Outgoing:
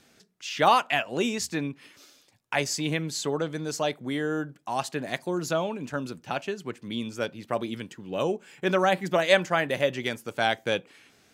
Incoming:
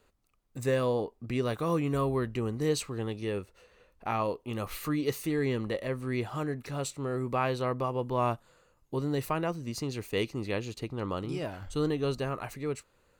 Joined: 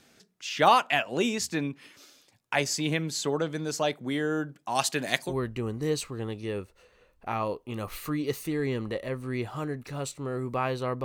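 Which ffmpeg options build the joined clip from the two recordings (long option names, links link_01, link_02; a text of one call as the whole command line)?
ffmpeg -i cue0.wav -i cue1.wav -filter_complex "[0:a]asettb=1/sr,asplit=3[link_01][link_02][link_03];[link_01]atrim=end=4.754[link_04];[link_02]atrim=start=4.75:end=5.34,asetpts=PTS-STARTPTS,afade=type=in:duration=0.004:curve=qsin,afade=type=out:start_time=0.586:duration=0.004:curve=qsin,highshelf=frequency=2000:gain=10[link_05];[link_03]atrim=start=5.336[link_06];[link_04][link_05]acrossfade=duration=0.004:curve1=hsin:curve2=qsin[link_07];[link_07][link_06]acrossfade=duration=0.004:curve1=qsin:curve2=hsin,apad=whole_dur=11.04,atrim=end=11.04,atrim=end=5.34,asetpts=PTS-STARTPTS[link_08];[1:a]atrim=start=2.05:end=7.83,asetpts=PTS-STARTPTS[link_09];[link_08][link_09]acrossfade=duration=0.08:curve1=tri:curve2=tri" out.wav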